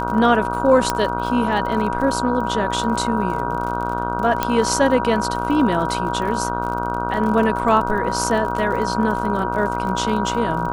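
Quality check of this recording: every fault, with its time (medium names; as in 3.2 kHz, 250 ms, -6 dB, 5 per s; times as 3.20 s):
buzz 60 Hz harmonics 26 -26 dBFS
crackle 47 per s -27 dBFS
whine 960 Hz -25 dBFS
0.90 s: pop -4 dBFS
4.43 s: pop -4 dBFS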